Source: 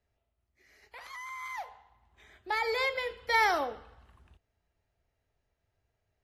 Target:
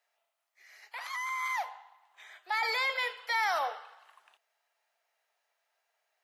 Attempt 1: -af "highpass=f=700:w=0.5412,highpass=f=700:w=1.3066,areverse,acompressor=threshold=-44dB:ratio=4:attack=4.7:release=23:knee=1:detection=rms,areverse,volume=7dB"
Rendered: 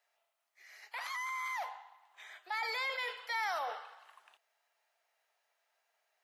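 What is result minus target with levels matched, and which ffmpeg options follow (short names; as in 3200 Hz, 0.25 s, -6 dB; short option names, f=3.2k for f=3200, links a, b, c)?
compressor: peak gain reduction +6 dB
-af "highpass=f=700:w=0.5412,highpass=f=700:w=1.3066,areverse,acompressor=threshold=-36dB:ratio=4:attack=4.7:release=23:knee=1:detection=rms,areverse,volume=7dB"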